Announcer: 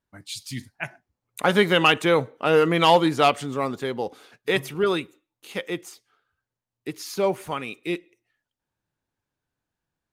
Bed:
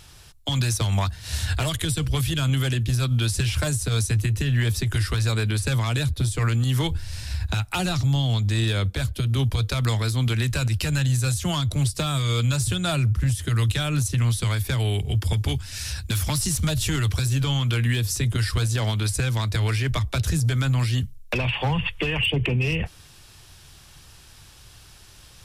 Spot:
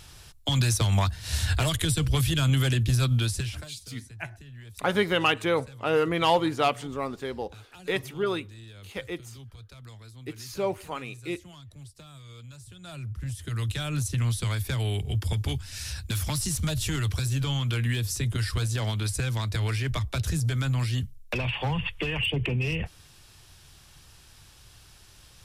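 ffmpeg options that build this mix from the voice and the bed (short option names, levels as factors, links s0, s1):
-filter_complex "[0:a]adelay=3400,volume=0.531[s0];[1:a]volume=8.41,afade=t=out:st=3.06:d=0.63:silence=0.0707946,afade=t=in:st=12.75:d=1.38:silence=0.112202[s1];[s0][s1]amix=inputs=2:normalize=0"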